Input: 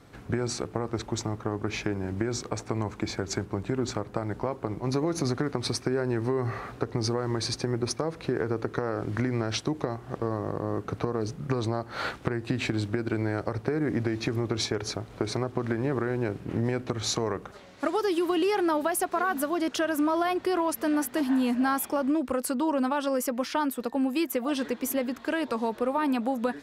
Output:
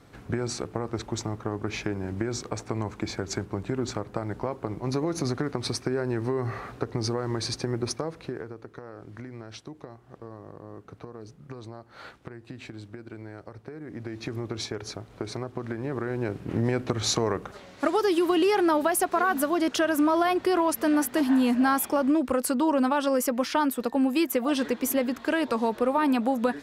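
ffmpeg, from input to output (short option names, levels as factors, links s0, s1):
-af "volume=5.96,afade=t=out:st=7.9:d=0.65:silence=0.237137,afade=t=in:st=13.87:d=0.46:silence=0.375837,afade=t=in:st=15.81:d=1.02:silence=0.421697"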